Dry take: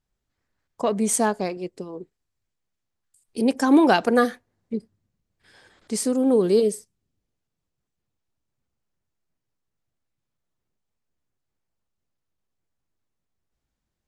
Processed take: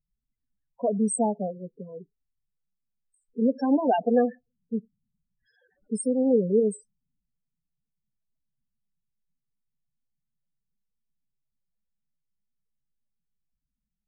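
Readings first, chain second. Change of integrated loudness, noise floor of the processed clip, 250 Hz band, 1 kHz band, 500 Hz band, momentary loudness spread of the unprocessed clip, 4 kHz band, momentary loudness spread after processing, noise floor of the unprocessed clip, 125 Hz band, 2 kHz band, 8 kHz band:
-4.5 dB, -84 dBFS, -3.5 dB, -5.0 dB, -3.0 dB, 19 LU, under -15 dB, 18 LU, -82 dBFS, -1.0 dB, -16.5 dB, -7.0 dB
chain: loudest bins only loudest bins 8; static phaser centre 340 Hz, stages 6

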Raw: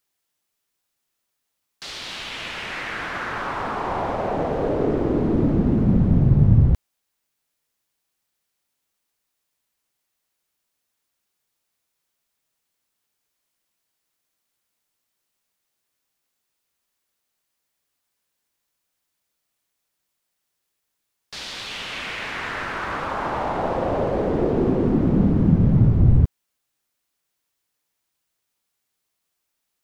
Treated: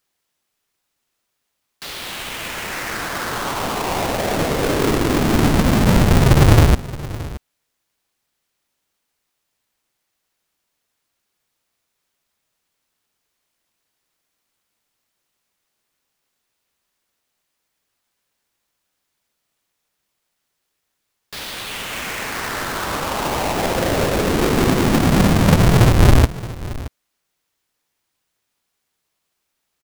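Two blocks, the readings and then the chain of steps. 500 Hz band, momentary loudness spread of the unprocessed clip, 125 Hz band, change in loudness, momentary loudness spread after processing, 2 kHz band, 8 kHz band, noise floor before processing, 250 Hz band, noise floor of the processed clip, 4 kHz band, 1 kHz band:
+4.0 dB, 14 LU, +3.0 dB, +4.0 dB, 17 LU, +7.0 dB, no reading, -78 dBFS, +2.5 dB, -76 dBFS, +9.0 dB, +5.5 dB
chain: square wave that keeps the level; delay 623 ms -17 dB

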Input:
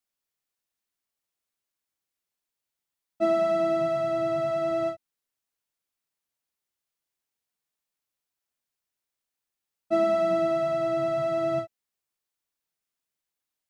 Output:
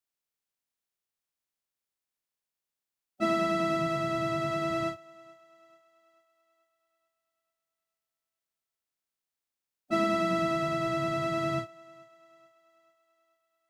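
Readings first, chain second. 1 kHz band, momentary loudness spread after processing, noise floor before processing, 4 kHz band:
-0.5 dB, 6 LU, under -85 dBFS, +5.0 dB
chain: spectral peaks clipped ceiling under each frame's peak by 15 dB; on a send: thinning echo 437 ms, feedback 51%, high-pass 350 Hz, level -23 dB; on the sum: trim -3.5 dB

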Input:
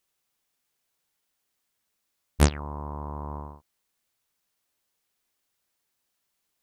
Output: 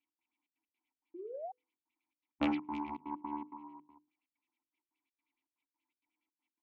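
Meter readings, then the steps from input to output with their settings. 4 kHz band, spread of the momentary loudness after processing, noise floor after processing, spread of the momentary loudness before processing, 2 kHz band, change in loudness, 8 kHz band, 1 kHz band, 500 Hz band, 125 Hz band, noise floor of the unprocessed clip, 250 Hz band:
-11.5 dB, 20 LU, under -85 dBFS, 15 LU, -8.0 dB, -10.5 dB, under -35 dB, -4.0 dB, -7.5 dB, -27.5 dB, -79 dBFS, -2.5 dB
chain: comb filter that takes the minimum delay 3 ms; vowel filter u; treble shelf 2.1 kHz +9 dB; band-stop 450 Hz, Q 12; multi-tap echo 51/60/309/465 ms -7/-7.5/-14/-16 dB; trance gate "x.xxx.x.x" 162 bpm -24 dB; peaking EQ 250 Hz +6.5 dB 0.55 oct; painted sound rise, 1.14–1.52 s, 330–790 Hz -47 dBFS; LFO low-pass sine 9.5 Hz 900–3500 Hz; hum notches 50/100/150/200/250/300/350/400/450/500 Hz; transformer saturation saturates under 910 Hz; trim +3 dB

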